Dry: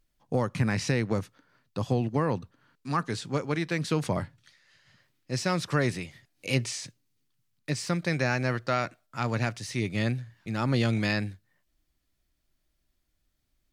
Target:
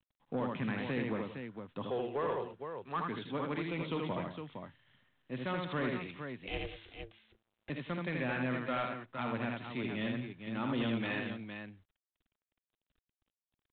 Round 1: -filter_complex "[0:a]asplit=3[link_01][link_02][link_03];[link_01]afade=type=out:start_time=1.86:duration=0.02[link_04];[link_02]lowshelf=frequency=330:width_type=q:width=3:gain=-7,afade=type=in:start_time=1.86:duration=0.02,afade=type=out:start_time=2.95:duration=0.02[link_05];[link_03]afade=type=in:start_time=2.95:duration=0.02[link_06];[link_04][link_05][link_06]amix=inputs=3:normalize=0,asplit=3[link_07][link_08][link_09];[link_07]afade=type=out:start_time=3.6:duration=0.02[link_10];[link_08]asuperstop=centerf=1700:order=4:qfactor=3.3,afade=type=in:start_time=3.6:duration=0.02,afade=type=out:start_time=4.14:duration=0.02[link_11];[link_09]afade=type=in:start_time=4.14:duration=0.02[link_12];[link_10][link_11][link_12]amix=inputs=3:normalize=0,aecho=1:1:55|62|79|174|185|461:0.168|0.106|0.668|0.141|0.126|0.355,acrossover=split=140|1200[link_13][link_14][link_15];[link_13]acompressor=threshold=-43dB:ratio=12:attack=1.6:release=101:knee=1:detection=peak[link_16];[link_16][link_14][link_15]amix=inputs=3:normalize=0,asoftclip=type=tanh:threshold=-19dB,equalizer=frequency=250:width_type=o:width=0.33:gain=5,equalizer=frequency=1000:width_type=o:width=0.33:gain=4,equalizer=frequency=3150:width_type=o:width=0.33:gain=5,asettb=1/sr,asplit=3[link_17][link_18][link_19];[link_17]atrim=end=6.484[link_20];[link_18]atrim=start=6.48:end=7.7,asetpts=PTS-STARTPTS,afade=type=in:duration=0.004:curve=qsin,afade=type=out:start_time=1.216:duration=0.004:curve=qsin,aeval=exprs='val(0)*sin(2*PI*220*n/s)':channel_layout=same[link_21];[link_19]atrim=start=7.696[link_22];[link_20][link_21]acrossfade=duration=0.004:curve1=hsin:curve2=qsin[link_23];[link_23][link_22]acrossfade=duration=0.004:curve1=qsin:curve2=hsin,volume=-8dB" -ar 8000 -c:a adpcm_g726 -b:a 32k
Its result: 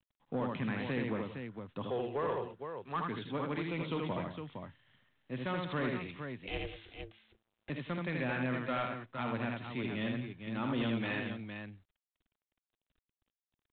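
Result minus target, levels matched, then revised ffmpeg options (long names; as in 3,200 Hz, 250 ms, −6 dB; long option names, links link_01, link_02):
downward compressor: peak gain reduction −8 dB
-filter_complex "[0:a]asplit=3[link_01][link_02][link_03];[link_01]afade=type=out:start_time=1.86:duration=0.02[link_04];[link_02]lowshelf=frequency=330:width_type=q:width=3:gain=-7,afade=type=in:start_time=1.86:duration=0.02,afade=type=out:start_time=2.95:duration=0.02[link_05];[link_03]afade=type=in:start_time=2.95:duration=0.02[link_06];[link_04][link_05][link_06]amix=inputs=3:normalize=0,asplit=3[link_07][link_08][link_09];[link_07]afade=type=out:start_time=3.6:duration=0.02[link_10];[link_08]asuperstop=centerf=1700:order=4:qfactor=3.3,afade=type=in:start_time=3.6:duration=0.02,afade=type=out:start_time=4.14:duration=0.02[link_11];[link_09]afade=type=in:start_time=4.14:duration=0.02[link_12];[link_10][link_11][link_12]amix=inputs=3:normalize=0,aecho=1:1:55|62|79|174|185|461:0.168|0.106|0.668|0.141|0.126|0.355,acrossover=split=140|1200[link_13][link_14][link_15];[link_13]acompressor=threshold=-51.5dB:ratio=12:attack=1.6:release=101:knee=1:detection=peak[link_16];[link_16][link_14][link_15]amix=inputs=3:normalize=0,asoftclip=type=tanh:threshold=-19dB,equalizer=frequency=250:width_type=o:width=0.33:gain=5,equalizer=frequency=1000:width_type=o:width=0.33:gain=4,equalizer=frequency=3150:width_type=o:width=0.33:gain=5,asettb=1/sr,asplit=3[link_17][link_18][link_19];[link_17]atrim=end=6.484[link_20];[link_18]atrim=start=6.48:end=7.7,asetpts=PTS-STARTPTS,afade=type=in:duration=0.004:curve=qsin,afade=type=out:start_time=1.216:duration=0.004:curve=qsin,aeval=exprs='val(0)*sin(2*PI*220*n/s)':channel_layout=same[link_21];[link_19]atrim=start=7.696[link_22];[link_20][link_21]acrossfade=duration=0.004:curve1=hsin:curve2=qsin[link_23];[link_23][link_22]acrossfade=duration=0.004:curve1=qsin:curve2=hsin,volume=-8dB" -ar 8000 -c:a adpcm_g726 -b:a 32k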